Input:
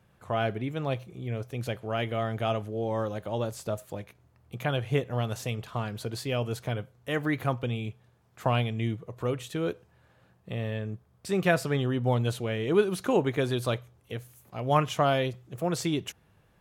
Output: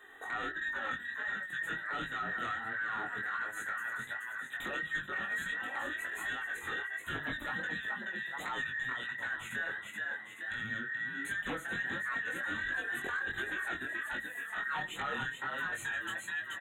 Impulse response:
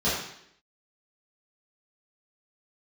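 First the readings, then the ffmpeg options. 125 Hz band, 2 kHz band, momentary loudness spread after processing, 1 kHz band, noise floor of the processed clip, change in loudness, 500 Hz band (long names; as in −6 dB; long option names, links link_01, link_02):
−23.5 dB, +6.0 dB, 3 LU, −7.0 dB, −47 dBFS, −6.0 dB, −19.5 dB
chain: -filter_complex "[0:a]afftfilt=real='real(if(between(b,1,1012),(2*floor((b-1)/92)+1)*92-b,b),0)':imag='imag(if(between(b,1,1012),(2*floor((b-1)/92)+1)*92-b,b),0)*if(between(b,1,1012),-1,1)':win_size=2048:overlap=0.75,asplit=5[link_01][link_02][link_03][link_04][link_05];[link_02]adelay=429,afreqshift=46,volume=-8dB[link_06];[link_03]adelay=858,afreqshift=92,volume=-17.1dB[link_07];[link_04]adelay=1287,afreqshift=138,volume=-26.2dB[link_08];[link_05]adelay=1716,afreqshift=184,volume=-35.4dB[link_09];[link_01][link_06][link_07][link_08][link_09]amix=inputs=5:normalize=0,flanger=delay=2.5:depth=6.9:regen=23:speed=0.15:shape=sinusoidal,acrossover=split=300[link_10][link_11];[link_11]acompressor=threshold=-55dB:ratio=2[link_12];[link_10][link_12]amix=inputs=2:normalize=0,asplit=2[link_13][link_14];[link_14]acrusher=bits=3:mix=0:aa=0.000001,volume=-10dB[link_15];[link_13][link_15]amix=inputs=2:normalize=0,acompressor=threshold=-48dB:ratio=1.5,aeval=exprs='0.0708*sin(PI/2*7.94*val(0)/0.0708)':channel_layout=same,asuperstop=centerf=5100:order=12:qfactor=2,lowshelf=frequency=100:gain=-8.5,bandreject=frequency=50:width_type=h:width=6,bandreject=frequency=100:width_type=h:width=6,bandreject=frequency=150:width_type=h:width=6,flanger=delay=19:depth=5.1:speed=1.4,highshelf=frequency=9100:gain=-5,volume=-5.5dB"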